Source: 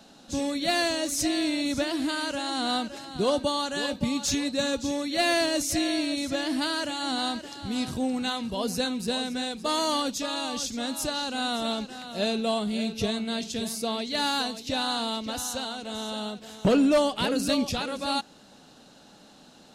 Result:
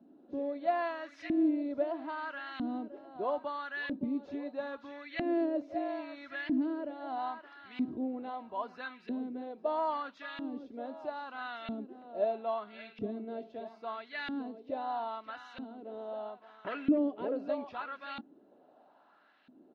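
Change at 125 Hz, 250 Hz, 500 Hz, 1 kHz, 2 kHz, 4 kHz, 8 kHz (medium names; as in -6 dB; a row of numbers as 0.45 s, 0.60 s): -17.0 dB, -7.5 dB, -7.0 dB, -6.5 dB, -9.5 dB, -24.0 dB, under -40 dB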